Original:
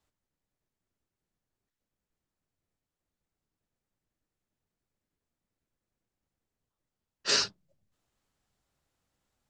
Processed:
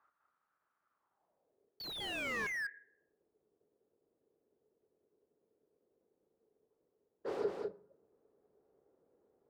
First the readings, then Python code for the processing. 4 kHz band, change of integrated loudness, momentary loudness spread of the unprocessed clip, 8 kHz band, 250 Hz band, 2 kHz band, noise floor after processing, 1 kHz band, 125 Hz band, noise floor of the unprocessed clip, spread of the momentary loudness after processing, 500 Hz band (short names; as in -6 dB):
-12.0 dB, -11.0 dB, 10 LU, -19.0 dB, +3.5 dB, +1.0 dB, -84 dBFS, -2.0 dB, -1.0 dB, under -85 dBFS, 10 LU, +4.5 dB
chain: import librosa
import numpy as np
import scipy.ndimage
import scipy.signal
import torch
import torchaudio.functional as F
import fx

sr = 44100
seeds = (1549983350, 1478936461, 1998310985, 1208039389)

p1 = scipy.signal.medfilt(x, 15)
p2 = fx.hum_notches(p1, sr, base_hz=60, count=3)
p3 = fx.fold_sine(p2, sr, drive_db=16, ceiling_db=-20.5)
p4 = fx.filter_sweep_bandpass(p3, sr, from_hz=1300.0, to_hz=430.0, start_s=0.91, end_s=1.53, q=5.7)
p5 = fx.spec_paint(p4, sr, seeds[0], shape='fall', start_s=1.8, length_s=0.67, low_hz=1600.0, high_hz=4600.0, level_db=-30.0)
p6 = p5 + fx.echo_single(p5, sr, ms=201, db=-4.5, dry=0)
p7 = fx.rev_plate(p6, sr, seeds[1], rt60_s=0.68, hf_ratio=0.5, predelay_ms=0, drr_db=16.5)
p8 = fx.slew_limit(p7, sr, full_power_hz=21.0)
y = p8 * 10.0 ** (1.5 / 20.0)